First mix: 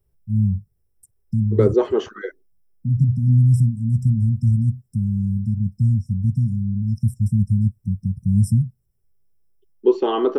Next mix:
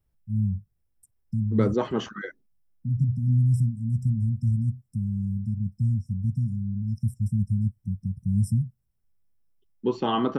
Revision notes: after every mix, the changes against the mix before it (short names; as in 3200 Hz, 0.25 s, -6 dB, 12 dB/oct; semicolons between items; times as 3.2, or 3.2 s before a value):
first voice -6.5 dB; second voice: remove resonant high-pass 390 Hz, resonance Q 4.2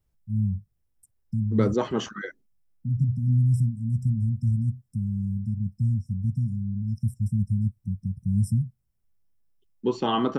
second voice: remove air absorption 98 m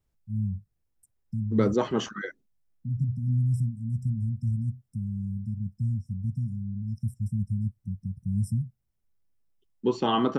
first voice -4.0 dB